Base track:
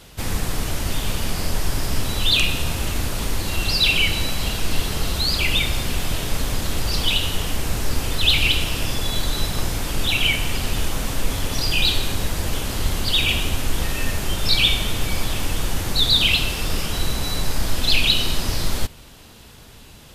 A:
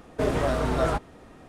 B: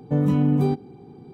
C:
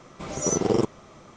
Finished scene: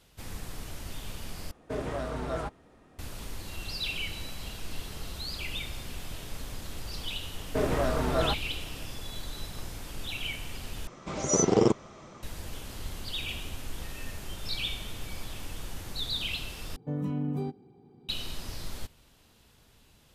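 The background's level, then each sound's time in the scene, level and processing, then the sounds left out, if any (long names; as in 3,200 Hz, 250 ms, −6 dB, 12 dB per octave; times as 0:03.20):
base track −16 dB
0:01.51: overwrite with A −9 dB
0:07.36: mix in A −3 dB
0:10.87: overwrite with C
0:16.76: overwrite with B −12 dB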